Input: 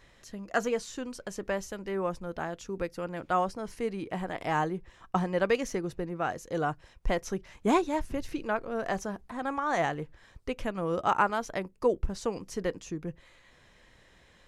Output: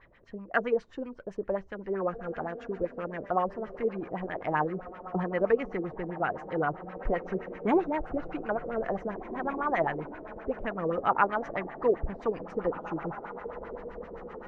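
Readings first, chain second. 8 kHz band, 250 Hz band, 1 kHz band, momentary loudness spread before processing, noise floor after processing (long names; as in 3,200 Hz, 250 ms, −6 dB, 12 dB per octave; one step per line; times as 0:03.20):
below −25 dB, −0.5 dB, 0.0 dB, 11 LU, −51 dBFS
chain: feedback delay with all-pass diffusion 1,860 ms, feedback 41%, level −11.5 dB
auto-filter low-pass sine 7.7 Hz 400–2,400 Hz
level −2.5 dB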